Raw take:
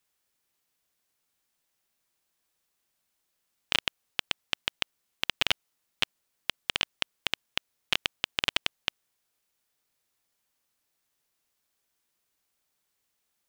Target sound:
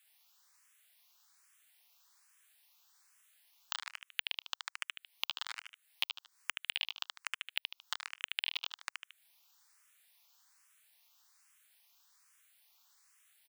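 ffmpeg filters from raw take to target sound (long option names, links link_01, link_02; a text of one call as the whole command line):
ffmpeg -i in.wav -filter_complex "[0:a]aecho=1:1:75|150|225:0.562|0.129|0.0297,asplit=2[link_01][link_02];[link_02]aeval=exprs='clip(val(0),-1,0.0531)':channel_layout=same,volume=-6dB[link_03];[link_01][link_03]amix=inputs=2:normalize=0,acompressor=threshold=-39dB:ratio=6,highpass=frequency=890:width=0.5412,highpass=frequency=890:width=1.3066,asplit=2[link_04][link_05];[link_05]afreqshift=1.2[link_06];[link_04][link_06]amix=inputs=2:normalize=1,volume=8dB" out.wav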